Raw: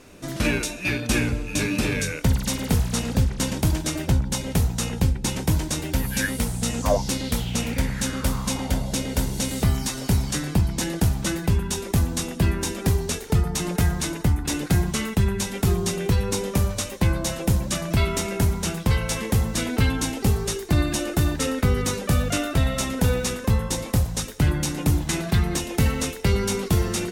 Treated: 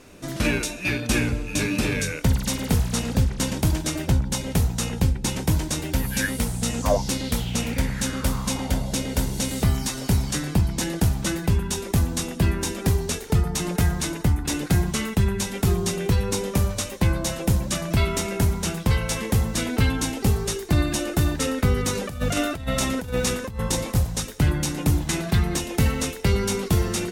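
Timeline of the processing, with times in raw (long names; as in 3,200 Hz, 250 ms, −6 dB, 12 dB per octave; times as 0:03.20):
0:21.95–0:23.95: compressor whose output falls as the input rises −24 dBFS, ratio −0.5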